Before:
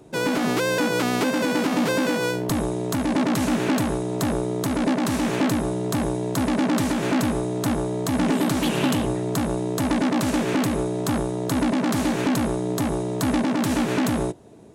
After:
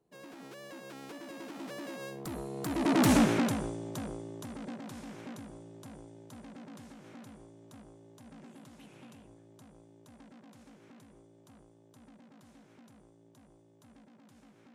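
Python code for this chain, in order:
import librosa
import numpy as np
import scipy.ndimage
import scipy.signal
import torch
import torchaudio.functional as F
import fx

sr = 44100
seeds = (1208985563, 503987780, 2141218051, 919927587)

y = fx.doppler_pass(x, sr, speed_mps=33, closest_m=4.7, pass_at_s=3.12)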